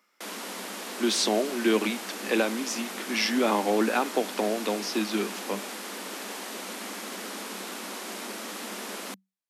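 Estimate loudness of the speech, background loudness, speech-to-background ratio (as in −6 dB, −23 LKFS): −27.5 LKFS, −36.0 LKFS, 8.5 dB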